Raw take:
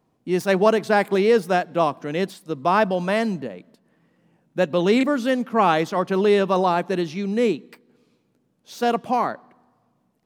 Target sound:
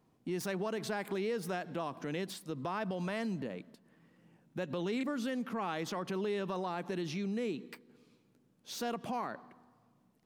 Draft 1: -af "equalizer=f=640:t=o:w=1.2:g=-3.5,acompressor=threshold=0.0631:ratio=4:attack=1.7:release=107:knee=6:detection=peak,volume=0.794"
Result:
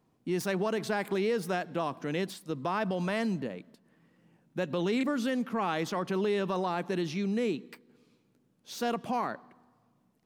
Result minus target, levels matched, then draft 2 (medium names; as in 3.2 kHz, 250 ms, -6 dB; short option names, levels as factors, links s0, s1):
compression: peak gain reduction -6 dB
-af "equalizer=f=640:t=o:w=1.2:g=-3.5,acompressor=threshold=0.0251:ratio=4:attack=1.7:release=107:knee=6:detection=peak,volume=0.794"